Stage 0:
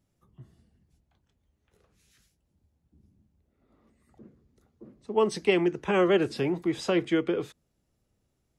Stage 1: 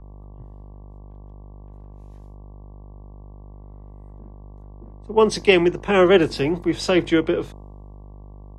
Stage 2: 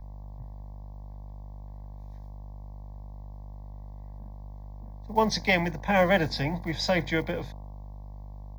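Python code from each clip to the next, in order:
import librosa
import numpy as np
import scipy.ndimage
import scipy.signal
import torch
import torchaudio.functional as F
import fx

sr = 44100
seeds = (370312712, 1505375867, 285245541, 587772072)

y1 = fx.dynamic_eq(x, sr, hz=4600.0, q=0.74, threshold_db=-45.0, ratio=4.0, max_db=4)
y1 = fx.dmg_buzz(y1, sr, base_hz=50.0, harmonics=23, level_db=-44.0, tilt_db=-5, odd_only=False)
y1 = fx.band_widen(y1, sr, depth_pct=40)
y1 = F.gain(torch.from_numpy(y1), 5.5).numpy()
y2 = fx.block_float(y1, sr, bits=7)
y2 = fx.fixed_phaser(y2, sr, hz=1900.0, stages=8)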